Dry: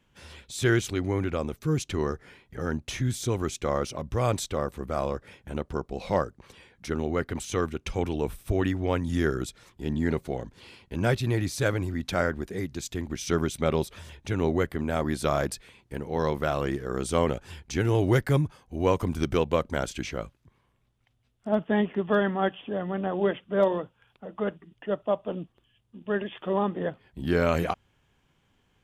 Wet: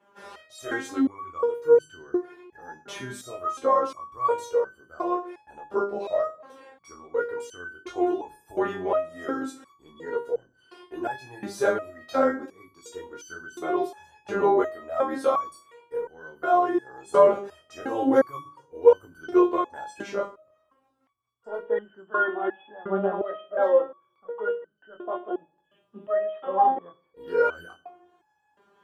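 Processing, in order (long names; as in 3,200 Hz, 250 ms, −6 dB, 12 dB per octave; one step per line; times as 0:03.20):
high-pass filter 99 Hz
flat-topped bell 660 Hz +14.5 dB 2.8 octaves
mains-hum notches 50/100/150/200/250/300/350/400 Hz
in parallel at −2 dB: downward compressor, threshold −37 dBFS, peak gain reduction 30 dB
on the sum: chorus effect 1.1 Hz, delay 18.5 ms, depth 4.9 ms
on a send at −18.5 dB: convolution reverb RT60 0.75 s, pre-delay 15 ms
on the sum: step-sequenced resonator 2.8 Hz 200–1,500 Hz
level +8.5 dB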